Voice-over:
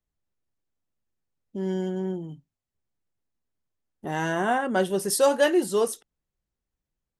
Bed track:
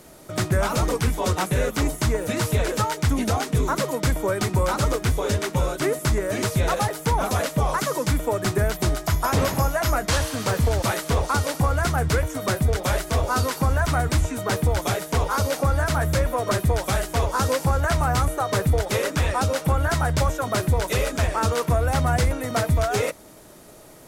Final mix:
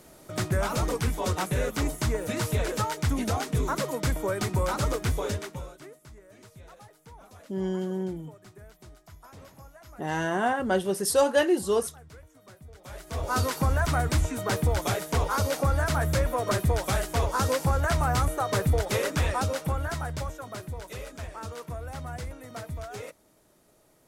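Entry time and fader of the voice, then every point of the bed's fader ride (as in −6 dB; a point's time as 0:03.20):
5.95 s, −1.5 dB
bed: 0:05.24 −5 dB
0:06.00 −27.5 dB
0:12.71 −27.5 dB
0:13.35 −3.5 dB
0:19.25 −3.5 dB
0:20.68 −16 dB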